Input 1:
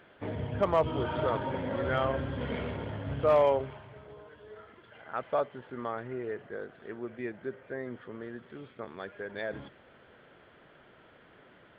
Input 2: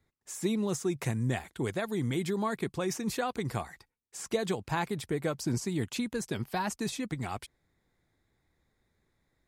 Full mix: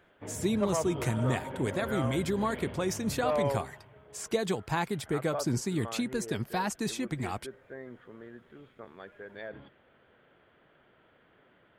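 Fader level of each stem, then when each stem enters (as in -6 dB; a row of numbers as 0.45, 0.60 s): -6.0, +1.0 dB; 0.00, 0.00 s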